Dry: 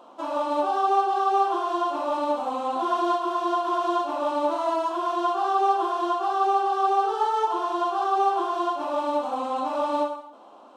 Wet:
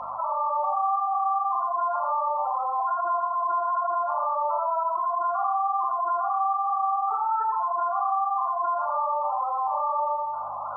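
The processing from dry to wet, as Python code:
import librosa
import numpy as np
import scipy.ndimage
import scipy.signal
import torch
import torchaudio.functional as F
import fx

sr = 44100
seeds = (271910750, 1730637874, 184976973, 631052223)

p1 = fx.cvsd(x, sr, bps=32000)
p2 = scipy.signal.sosfilt(scipy.signal.butter(2, 950.0, 'highpass', fs=sr, output='sos'), p1)
p3 = fx.spec_gate(p2, sr, threshold_db=-10, keep='strong')
p4 = fx.volume_shaper(p3, sr, bpm=92, per_beat=2, depth_db=-7, release_ms=109.0, shape='slow start')
p5 = p3 + F.gain(torch.from_numpy(p4), 2.5).numpy()
p6 = fx.add_hum(p5, sr, base_hz=50, snr_db=33)
p7 = fx.bandpass_q(p6, sr, hz=1500.0, q=0.59)
p8 = p7 + fx.echo_single(p7, sr, ms=91, db=-6.0, dry=0)
p9 = fx.rev_schroeder(p8, sr, rt60_s=0.33, comb_ms=27, drr_db=6.0)
p10 = fx.env_flatten(p9, sr, amount_pct=70)
y = F.gain(torch.from_numpy(p10), -7.0).numpy()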